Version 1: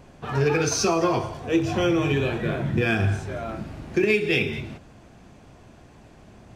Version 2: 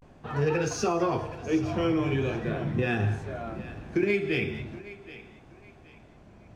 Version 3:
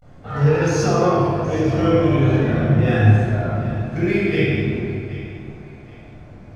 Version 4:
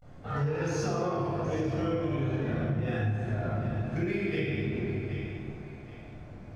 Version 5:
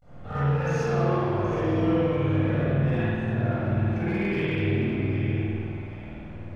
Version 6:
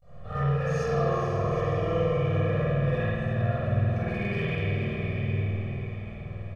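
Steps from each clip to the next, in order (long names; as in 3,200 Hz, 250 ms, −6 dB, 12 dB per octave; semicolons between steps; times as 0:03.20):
high-shelf EQ 3,000 Hz −8 dB; pitch vibrato 0.42 Hz 83 cents; feedback echo with a high-pass in the loop 773 ms, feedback 32%, high-pass 420 Hz, level −15.5 dB; level −4 dB
parametric band 2,600 Hz −5 dB 0.28 octaves; convolution reverb RT60 1.9 s, pre-delay 19 ms, DRR −6.5 dB; level −1 dB
downward compressor 6 to 1, threshold −22 dBFS, peak gain reduction 14 dB; level −5 dB
gain into a clipping stage and back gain 25.5 dB; spring reverb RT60 1.6 s, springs 50 ms, chirp 75 ms, DRR −9.5 dB; level −3.5 dB
comb filter 1.7 ms, depth 87%; feedback delay with all-pass diffusion 468 ms, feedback 41%, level −8 dB; level −4.5 dB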